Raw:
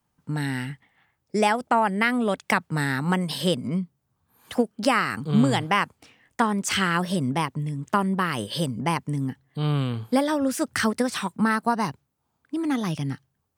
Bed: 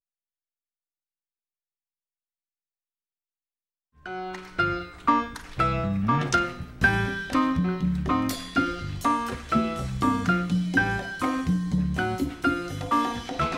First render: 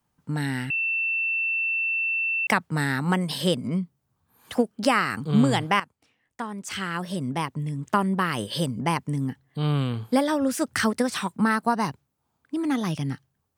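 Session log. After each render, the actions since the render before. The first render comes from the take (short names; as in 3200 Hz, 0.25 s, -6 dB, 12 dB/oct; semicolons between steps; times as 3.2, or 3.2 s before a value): 0.7–2.47 bleep 2680 Hz -22.5 dBFS; 5.8–7.76 fade in quadratic, from -13.5 dB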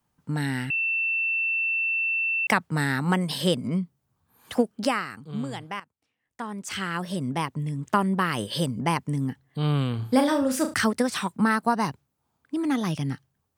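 4.78–6.49 dip -12 dB, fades 0.46 s quadratic; 9.95–10.74 flutter echo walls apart 6 m, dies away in 0.3 s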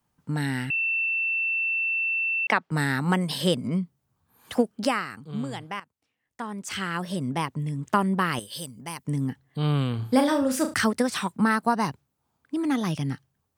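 1.06–2.71 three-band isolator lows -22 dB, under 220 Hz, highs -16 dB, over 5100 Hz; 8.39–9.05 pre-emphasis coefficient 0.8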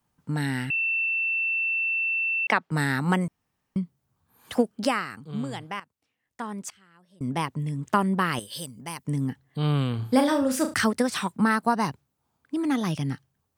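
3.28–3.76 room tone; 6.69–7.21 flipped gate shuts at -32 dBFS, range -28 dB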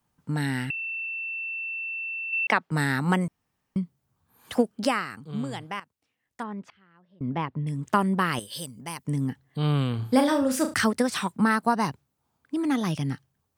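0.71–2.33 ladder high-pass 1900 Hz, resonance 85%; 6.43–7.67 air absorption 340 m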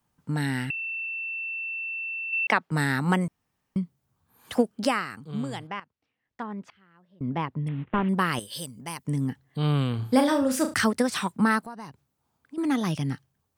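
5.67–6.5 air absorption 150 m; 7.68–8.09 CVSD 16 kbps; 11.61–12.58 compressor 2.5:1, threshold -44 dBFS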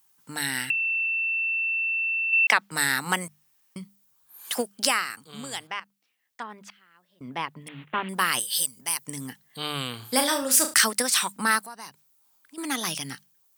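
tilt +4.5 dB/oct; notches 50/100/150/200 Hz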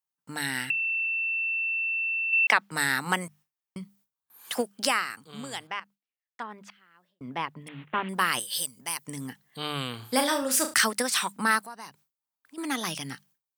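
gate with hold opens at -51 dBFS; high shelf 3800 Hz -6.5 dB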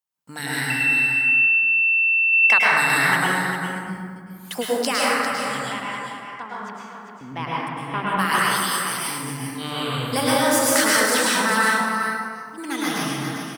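echo 0.399 s -8 dB; plate-style reverb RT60 1.9 s, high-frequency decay 0.45×, pre-delay 95 ms, DRR -6.5 dB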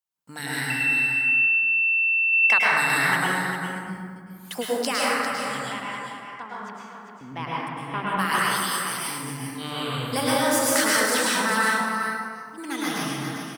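gain -3 dB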